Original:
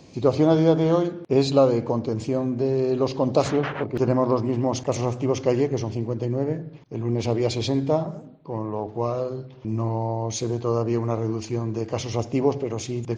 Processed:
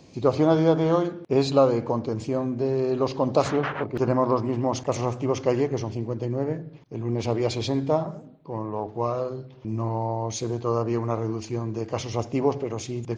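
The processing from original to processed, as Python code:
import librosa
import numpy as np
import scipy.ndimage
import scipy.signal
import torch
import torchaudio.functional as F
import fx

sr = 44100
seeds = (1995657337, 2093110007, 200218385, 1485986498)

y = fx.dynamic_eq(x, sr, hz=1200.0, q=0.93, threshold_db=-35.0, ratio=4.0, max_db=5)
y = y * 10.0 ** (-2.5 / 20.0)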